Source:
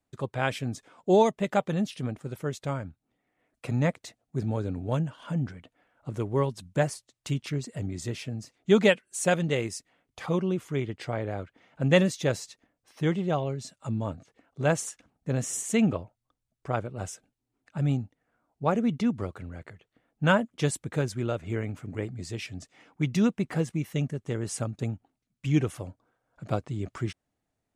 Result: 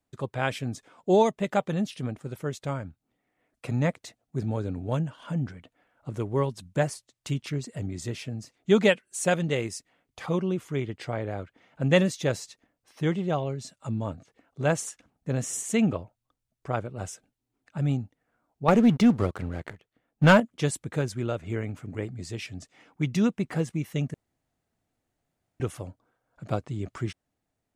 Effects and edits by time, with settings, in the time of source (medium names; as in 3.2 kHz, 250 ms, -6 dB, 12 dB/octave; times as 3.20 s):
18.68–20.40 s: waveshaping leveller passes 2
24.14–25.60 s: room tone